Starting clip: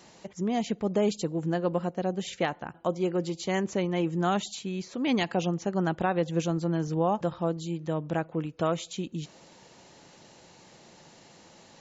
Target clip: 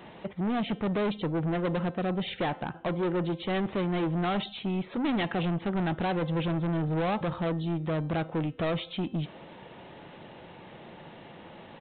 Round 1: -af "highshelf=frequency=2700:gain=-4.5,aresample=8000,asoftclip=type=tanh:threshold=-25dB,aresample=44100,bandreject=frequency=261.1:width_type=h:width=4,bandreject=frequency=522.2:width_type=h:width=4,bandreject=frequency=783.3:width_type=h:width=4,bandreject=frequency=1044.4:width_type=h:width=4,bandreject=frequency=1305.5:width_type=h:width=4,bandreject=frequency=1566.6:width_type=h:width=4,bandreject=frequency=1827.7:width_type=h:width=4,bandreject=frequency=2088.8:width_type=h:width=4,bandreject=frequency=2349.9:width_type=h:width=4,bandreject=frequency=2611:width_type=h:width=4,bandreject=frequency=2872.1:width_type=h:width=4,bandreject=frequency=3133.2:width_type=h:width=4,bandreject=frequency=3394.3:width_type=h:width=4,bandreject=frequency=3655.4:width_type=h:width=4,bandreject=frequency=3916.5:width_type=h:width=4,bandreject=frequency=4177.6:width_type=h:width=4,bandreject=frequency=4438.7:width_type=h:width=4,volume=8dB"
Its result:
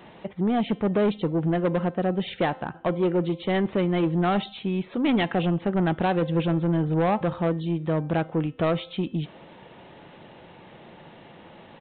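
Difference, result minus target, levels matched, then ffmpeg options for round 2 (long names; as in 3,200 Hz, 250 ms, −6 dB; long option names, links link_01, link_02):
soft clipping: distortion −6 dB
-af "highshelf=frequency=2700:gain=-4.5,aresample=8000,asoftclip=type=tanh:threshold=-33.5dB,aresample=44100,bandreject=frequency=261.1:width_type=h:width=4,bandreject=frequency=522.2:width_type=h:width=4,bandreject=frequency=783.3:width_type=h:width=4,bandreject=frequency=1044.4:width_type=h:width=4,bandreject=frequency=1305.5:width_type=h:width=4,bandreject=frequency=1566.6:width_type=h:width=4,bandreject=frequency=1827.7:width_type=h:width=4,bandreject=frequency=2088.8:width_type=h:width=4,bandreject=frequency=2349.9:width_type=h:width=4,bandreject=frequency=2611:width_type=h:width=4,bandreject=frequency=2872.1:width_type=h:width=4,bandreject=frequency=3133.2:width_type=h:width=4,bandreject=frequency=3394.3:width_type=h:width=4,bandreject=frequency=3655.4:width_type=h:width=4,bandreject=frequency=3916.5:width_type=h:width=4,bandreject=frequency=4177.6:width_type=h:width=4,bandreject=frequency=4438.7:width_type=h:width=4,volume=8dB"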